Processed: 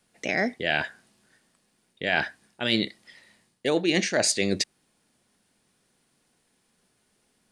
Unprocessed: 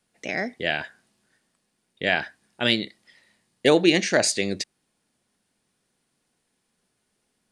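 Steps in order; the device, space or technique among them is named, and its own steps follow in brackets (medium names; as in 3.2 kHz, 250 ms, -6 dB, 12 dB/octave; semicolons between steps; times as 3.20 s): compression on the reversed sound (reverse; compression 12:1, threshold -24 dBFS, peak gain reduction 12.5 dB; reverse); trim +4.5 dB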